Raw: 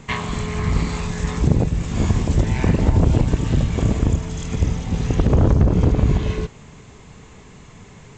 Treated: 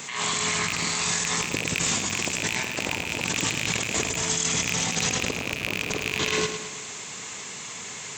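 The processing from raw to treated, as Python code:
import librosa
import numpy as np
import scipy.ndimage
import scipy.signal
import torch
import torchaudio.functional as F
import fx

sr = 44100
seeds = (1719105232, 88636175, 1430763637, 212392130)

p1 = fx.rattle_buzz(x, sr, strikes_db=-15.0, level_db=-13.0)
p2 = scipy.signal.sosfilt(scipy.signal.butter(2, 98.0, 'highpass', fs=sr, output='sos'), p1)
p3 = fx.tilt_eq(p2, sr, slope=4.5)
p4 = fx.over_compress(p3, sr, threshold_db=-30.0, ratio=-1.0)
p5 = p4 + fx.echo_feedback(p4, sr, ms=107, feedback_pct=50, wet_db=-9, dry=0)
y = F.gain(torch.from_numpy(p5), 1.5).numpy()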